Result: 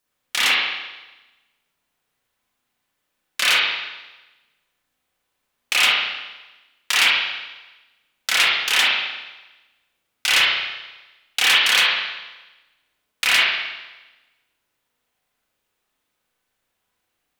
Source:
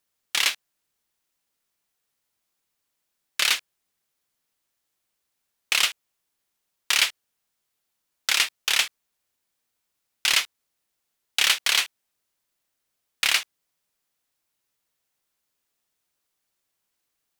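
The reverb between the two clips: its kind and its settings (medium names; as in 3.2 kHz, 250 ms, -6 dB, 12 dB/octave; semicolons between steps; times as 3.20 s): spring tank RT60 1.1 s, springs 33/37 ms, chirp 35 ms, DRR -7.5 dB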